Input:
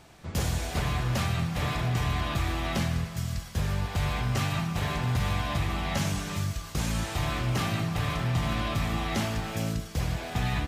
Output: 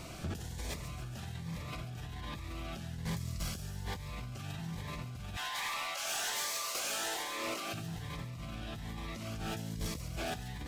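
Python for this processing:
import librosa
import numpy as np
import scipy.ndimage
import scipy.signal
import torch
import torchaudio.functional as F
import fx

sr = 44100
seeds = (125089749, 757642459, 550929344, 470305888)

y = fx.highpass(x, sr, hz=fx.line((5.35, 910.0), (7.73, 300.0)), slope=24, at=(5.35, 7.73), fade=0.02)
y = fx.over_compress(y, sr, threshold_db=-39.0, ratio=-1.0)
y = 10.0 ** (-31.0 / 20.0) * np.tanh(y / 10.0 ** (-31.0 / 20.0))
y = fx.echo_wet_highpass(y, sr, ms=139, feedback_pct=59, hz=4700.0, wet_db=-8.0)
y = fx.notch_cascade(y, sr, direction='rising', hz=1.2)
y = y * 10.0 ** (1.0 / 20.0)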